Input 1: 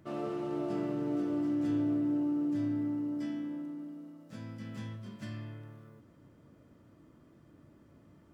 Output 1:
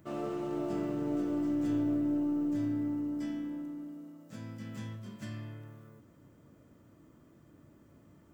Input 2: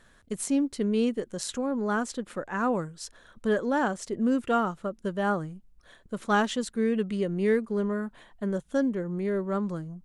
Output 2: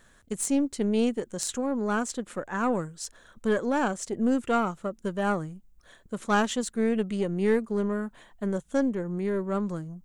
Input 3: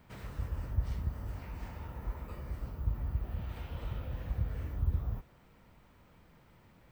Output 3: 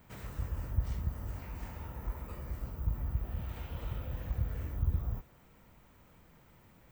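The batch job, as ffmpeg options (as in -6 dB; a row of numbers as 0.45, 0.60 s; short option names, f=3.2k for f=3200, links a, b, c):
-af "aeval=exprs='0.237*(cos(1*acos(clip(val(0)/0.237,-1,1)))-cos(1*PI/2))+0.0168*(cos(4*acos(clip(val(0)/0.237,-1,1)))-cos(4*PI/2))':c=same,aexciter=amount=2.2:drive=2:freq=6.4k"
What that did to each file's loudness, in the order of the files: 0.0, +0.5, 0.0 LU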